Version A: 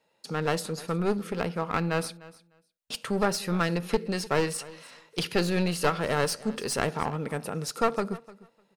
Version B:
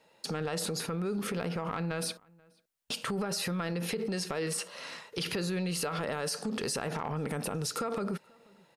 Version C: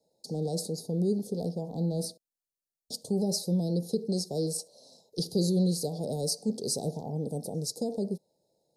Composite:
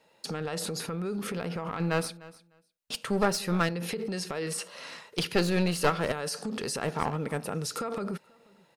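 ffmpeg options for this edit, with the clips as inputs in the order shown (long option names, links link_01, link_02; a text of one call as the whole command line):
ffmpeg -i take0.wav -i take1.wav -filter_complex "[0:a]asplit=3[link_01][link_02][link_03];[1:a]asplit=4[link_04][link_05][link_06][link_07];[link_04]atrim=end=1.802[link_08];[link_01]atrim=start=1.798:end=3.692[link_09];[link_05]atrim=start=3.688:end=5.142[link_10];[link_02]atrim=start=5.138:end=6.122[link_11];[link_06]atrim=start=6.118:end=6.9[link_12];[link_03]atrim=start=6.8:end=7.67[link_13];[link_07]atrim=start=7.57[link_14];[link_08][link_09]acrossfade=duration=0.004:curve1=hsin:curve2=hsin[link_15];[link_15][link_10]acrossfade=duration=0.004:curve1=hsin:curve2=hsin[link_16];[link_16][link_11]acrossfade=duration=0.004:curve1=hsin:curve2=hsin[link_17];[link_17][link_12]acrossfade=duration=0.004:curve1=hsin:curve2=hsin[link_18];[link_18][link_13]acrossfade=duration=0.1:curve1=tri:curve2=tri[link_19];[link_19][link_14]acrossfade=duration=0.1:curve1=tri:curve2=tri" out.wav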